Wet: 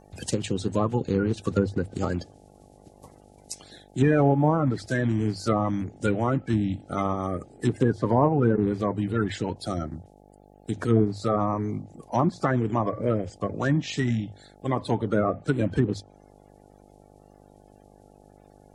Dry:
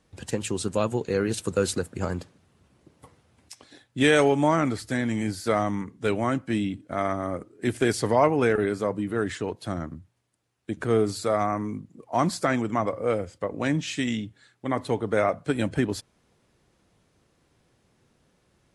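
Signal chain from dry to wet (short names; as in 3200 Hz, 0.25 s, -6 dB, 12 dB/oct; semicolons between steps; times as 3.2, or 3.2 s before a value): bin magnitudes rounded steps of 30 dB; tone controls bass +5 dB, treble +11 dB; notches 50/100 Hz; treble ducked by the level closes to 960 Hz, closed at -17 dBFS; buzz 50 Hz, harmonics 17, -54 dBFS -1 dB/oct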